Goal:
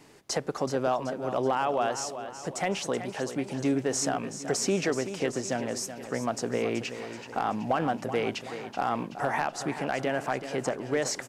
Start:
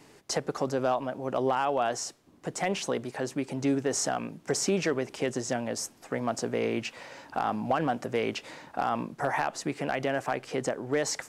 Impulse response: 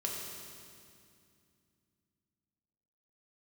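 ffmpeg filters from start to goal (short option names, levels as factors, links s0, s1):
-af "aecho=1:1:378|756|1134|1512|1890:0.282|0.138|0.0677|0.0332|0.0162"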